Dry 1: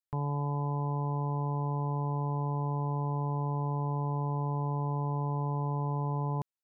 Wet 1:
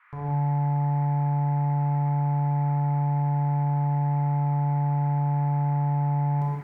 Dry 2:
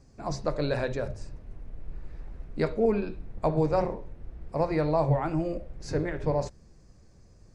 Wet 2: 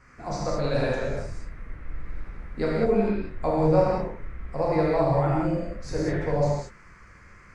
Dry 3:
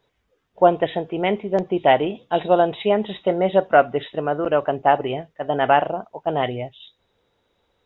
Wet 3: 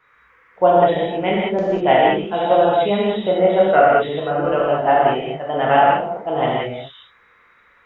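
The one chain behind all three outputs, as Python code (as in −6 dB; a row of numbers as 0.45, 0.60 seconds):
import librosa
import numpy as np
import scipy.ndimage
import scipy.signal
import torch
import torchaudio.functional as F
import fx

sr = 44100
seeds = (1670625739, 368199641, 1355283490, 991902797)

y = fx.dmg_noise_band(x, sr, seeds[0], low_hz=1000.0, high_hz=2200.0, level_db=-58.0)
y = fx.rev_gated(y, sr, seeds[1], gate_ms=230, shape='flat', drr_db=-5.5)
y = F.gain(torch.from_numpy(y), -3.0).numpy()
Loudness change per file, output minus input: +7.5, +3.5, +3.5 LU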